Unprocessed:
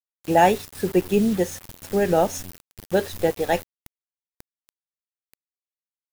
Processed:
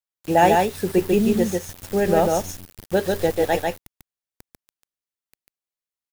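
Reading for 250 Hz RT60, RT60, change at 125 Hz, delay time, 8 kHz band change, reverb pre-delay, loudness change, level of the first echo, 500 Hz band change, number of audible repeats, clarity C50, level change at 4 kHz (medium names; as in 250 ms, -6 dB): no reverb, no reverb, +2.0 dB, 144 ms, +1.5 dB, no reverb, +1.5 dB, -3.0 dB, +2.0 dB, 1, no reverb, +2.0 dB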